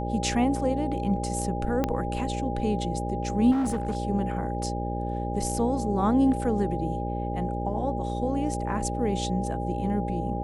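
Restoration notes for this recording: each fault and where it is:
buzz 60 Hz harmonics 10 -31 dBFS
whine 810 Hz -33 dBFS
1.84 s: pop -12 dBFS
3.51–3.97 s: clipped -23 dBFS

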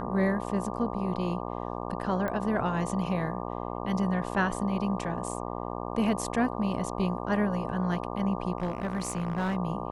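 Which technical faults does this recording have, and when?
buzz 60 Hz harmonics 20 -35 dBFS
2.28 s: pop -20 dBFS
8.58–9.55 s: clipped -25.5 dBFS

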